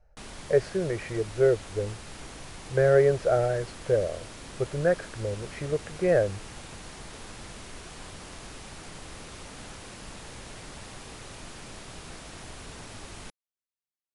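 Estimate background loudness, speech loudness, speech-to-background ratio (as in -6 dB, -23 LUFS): -43.0 LUFS, -26.5 LUFS, 16.5 dB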